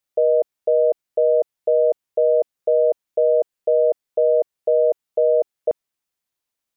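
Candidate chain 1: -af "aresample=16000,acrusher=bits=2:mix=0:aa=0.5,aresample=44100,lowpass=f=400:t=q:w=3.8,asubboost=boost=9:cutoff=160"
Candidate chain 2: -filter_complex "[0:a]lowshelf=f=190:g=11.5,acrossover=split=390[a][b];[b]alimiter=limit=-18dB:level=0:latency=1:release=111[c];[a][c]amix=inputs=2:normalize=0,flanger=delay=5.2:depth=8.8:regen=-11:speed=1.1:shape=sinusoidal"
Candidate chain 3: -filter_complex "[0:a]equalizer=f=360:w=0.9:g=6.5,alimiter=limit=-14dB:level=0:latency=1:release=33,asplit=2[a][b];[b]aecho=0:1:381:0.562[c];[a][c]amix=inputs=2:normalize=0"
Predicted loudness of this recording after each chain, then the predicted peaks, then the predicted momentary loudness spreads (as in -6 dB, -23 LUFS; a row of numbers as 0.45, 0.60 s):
-18.5, -27.0, -21.5 LUFS; -6.5, -14.5, -11.0 dBFS; 4, 4, 4 LU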